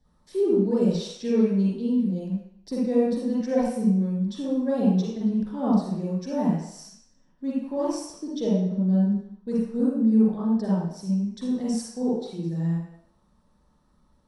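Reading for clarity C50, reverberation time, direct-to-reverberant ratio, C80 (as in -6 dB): -3.5 dB, 0.70 s, -8.5 dB, 3.0 dB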